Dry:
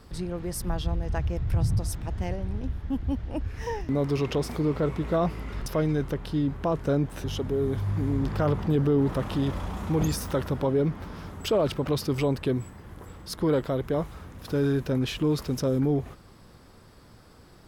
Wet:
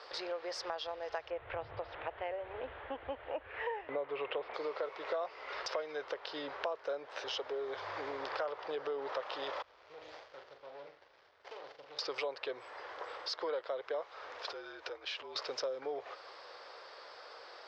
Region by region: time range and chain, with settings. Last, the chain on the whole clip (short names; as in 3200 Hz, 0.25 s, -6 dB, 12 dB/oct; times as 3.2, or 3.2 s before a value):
1.3–4.54 steep low-pass 3200 Hz + low shelf 240 Hz +10 dB
9.62–11.99 passive tone stack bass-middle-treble 6-0-2 + flutter echo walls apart 7.2 m, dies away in 0.39 s + running maximum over 33 samples
14.38–15.36 compressor 16:1, threshold -37 dBFS + frequency shift -56 Hz
whole clip: elliptic band-pass 510–5000 Hz, stop band 40 dB; compressor 4:1, threshold -45 dBFS; gain +7.5 dB